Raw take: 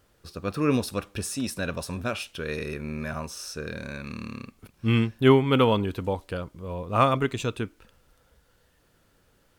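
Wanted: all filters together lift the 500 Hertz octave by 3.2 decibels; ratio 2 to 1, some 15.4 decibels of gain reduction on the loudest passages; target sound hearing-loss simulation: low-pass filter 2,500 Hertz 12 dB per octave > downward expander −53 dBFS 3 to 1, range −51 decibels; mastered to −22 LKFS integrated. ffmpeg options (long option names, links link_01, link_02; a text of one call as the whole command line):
ffmpeg -i in.wav -af "equalizer=frequency=500:width_type=o:gain=4,acompressor=threshold=-39dB:ratio=2,lowpass=2500,agate=range=-51dB:threshold=-53dB:ratio=3,volume=15dB" out.wav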